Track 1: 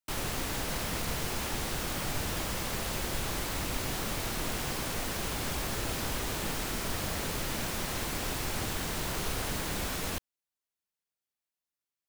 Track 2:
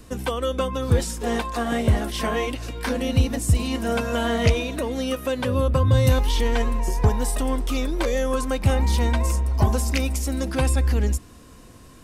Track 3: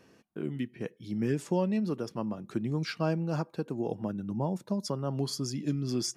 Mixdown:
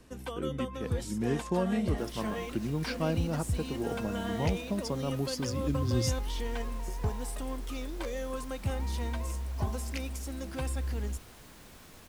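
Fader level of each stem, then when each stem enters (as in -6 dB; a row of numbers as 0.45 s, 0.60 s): -19.0 dB, -13.0 dB, -1.5 dB; 1.90 s, 0.00 s, 0.00 s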